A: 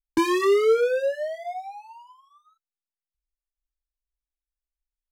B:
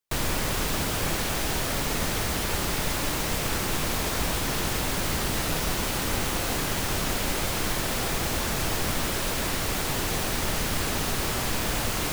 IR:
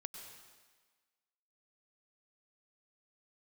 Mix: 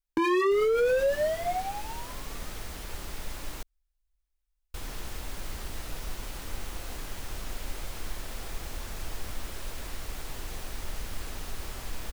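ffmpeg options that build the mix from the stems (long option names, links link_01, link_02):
-filter_complex "[0:a]acrossover=split=3200[link_01][link_02];[link_02]acompressor=threshold=-46dB:ratio=4:attack=1:release=60[link_03];[link_01][link_03]amix=inputs=2:normalize=0,volume=2.5dB[link_04];[1:a]adelay=400,volume=-14dB,asplit=3[link_05][link_06][link_07];[link_05]atrim=end=3.63,asetpts=PTS-STARTPTS,afade=type=out:start_time=3.626:duration=0.004:curve=hsin[link_08];[link_06]atrim=start=3.63:end=4.74,asetpts=PTS-STARTPTS,volume=0[link_09];[link_07]atrim=start=4.74,asetpts=PTS-STARTPTS,afade=type=in:duration=0.004:curve=hsin[link_10];[link_08][link_09][link_10]concat=n=3:v=0:a=1[link_11];[link_04][link_11]amix=inputs=2:normalize=0,asubboost=boost=4.5:cutoff=60,alimiter=limit=-19dB:level=0:latency=1:release=12"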